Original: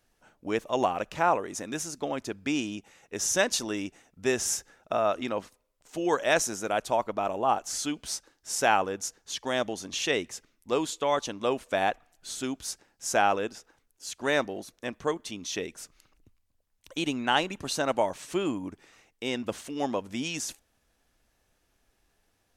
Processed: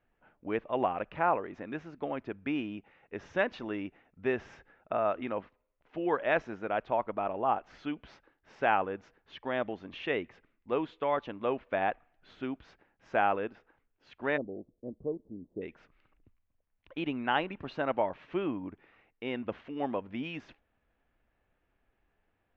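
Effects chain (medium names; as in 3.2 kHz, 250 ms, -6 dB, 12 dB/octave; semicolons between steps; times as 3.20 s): inverse Chebyshev low-pass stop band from 9.8 kHz, stop band 70 dB, from 14.36 s stop band from 2.3 kHz, from 15.61 s stop band from 10 kHz; trim -3.5 dB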